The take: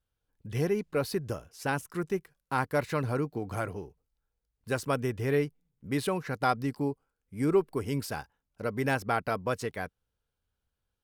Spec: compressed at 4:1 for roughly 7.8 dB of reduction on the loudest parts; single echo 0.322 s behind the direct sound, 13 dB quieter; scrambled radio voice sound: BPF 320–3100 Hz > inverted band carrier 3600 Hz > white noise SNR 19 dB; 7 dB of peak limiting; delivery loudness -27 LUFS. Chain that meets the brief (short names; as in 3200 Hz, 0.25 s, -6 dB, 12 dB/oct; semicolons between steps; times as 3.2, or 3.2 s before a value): compressor 4:1, threshold -28 dBFS; limiter -23.5 dBFS; BPF 320–3100 Hz; echo 0.322 s -13 dB; inverted band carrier 3600 Hz; white noise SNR 19 dB; gain +8.5 dB